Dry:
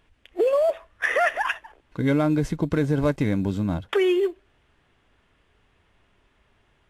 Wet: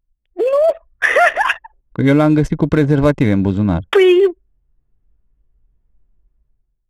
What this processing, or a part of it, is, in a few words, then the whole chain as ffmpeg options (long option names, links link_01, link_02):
voice memo with heavy noise removal: -af "anlmdn=1.58,dynaudnorm=framelen=120:gausssize=9:maxgain=14dB"